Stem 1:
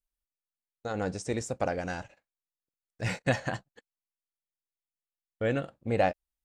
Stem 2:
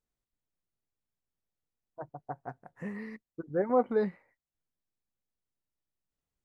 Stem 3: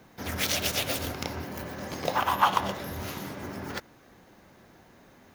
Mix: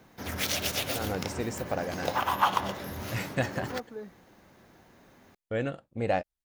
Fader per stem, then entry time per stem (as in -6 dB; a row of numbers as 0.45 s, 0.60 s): -2.0 dB, -13.0 dB, -2.0 dB; 0.10 s, 0.00 s, 0.00 s